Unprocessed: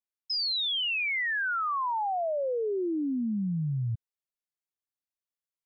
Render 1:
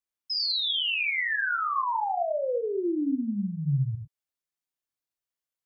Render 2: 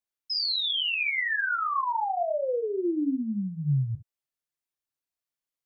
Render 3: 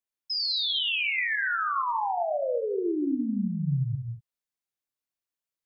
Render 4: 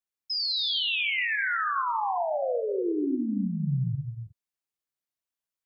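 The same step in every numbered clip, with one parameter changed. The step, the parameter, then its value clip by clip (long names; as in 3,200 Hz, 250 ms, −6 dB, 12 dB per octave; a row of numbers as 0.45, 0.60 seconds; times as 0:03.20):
reverb whose tail is shaped and stops, gate: 130, 80, 260, 380 milliseconds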